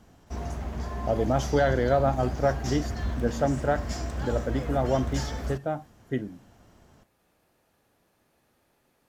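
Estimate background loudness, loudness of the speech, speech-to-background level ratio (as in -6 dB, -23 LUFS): -34.0 LUFS, -28.5 LUFS, 5.5 dB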